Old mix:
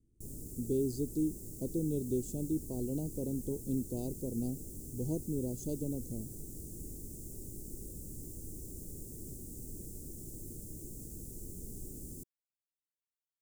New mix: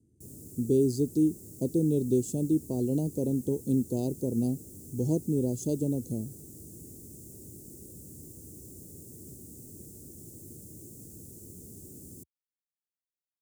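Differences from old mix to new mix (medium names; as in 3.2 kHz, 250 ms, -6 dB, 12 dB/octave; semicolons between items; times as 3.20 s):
speech +8.0 dB; master: add high-pass 75 Hz 24 dB/octave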